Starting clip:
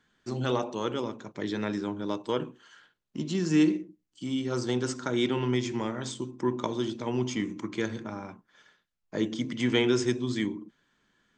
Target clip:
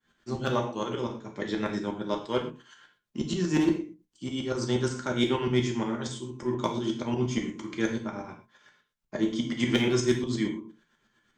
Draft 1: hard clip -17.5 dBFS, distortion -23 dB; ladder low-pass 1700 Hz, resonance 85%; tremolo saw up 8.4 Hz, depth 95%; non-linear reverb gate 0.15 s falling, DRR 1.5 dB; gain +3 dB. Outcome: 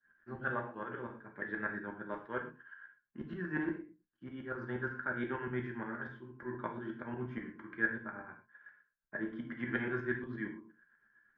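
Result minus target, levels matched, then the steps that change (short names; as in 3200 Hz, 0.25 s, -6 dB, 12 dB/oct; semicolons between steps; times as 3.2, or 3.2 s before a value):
2000 Hz band +10.5 dB
remove: ladder low-pass 1700 Hz, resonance 85%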